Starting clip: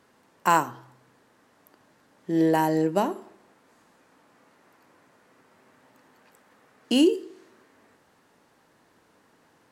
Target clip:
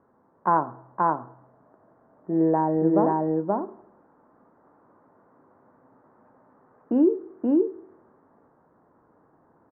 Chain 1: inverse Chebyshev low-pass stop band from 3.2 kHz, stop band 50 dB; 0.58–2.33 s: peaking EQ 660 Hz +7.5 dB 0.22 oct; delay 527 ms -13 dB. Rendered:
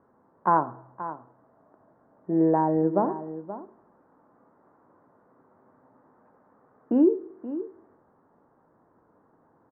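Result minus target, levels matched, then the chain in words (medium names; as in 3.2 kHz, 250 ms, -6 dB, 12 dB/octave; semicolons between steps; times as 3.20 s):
echo-to-direct -11.5 dB
inverse Chebyshev low-pass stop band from 3.2 kHz, stop band 50 dB; 0.58–2.33 s: peaking EQ 660 Hz +7.5 dB 0.22 oct; delay 527 ms -1.5 dB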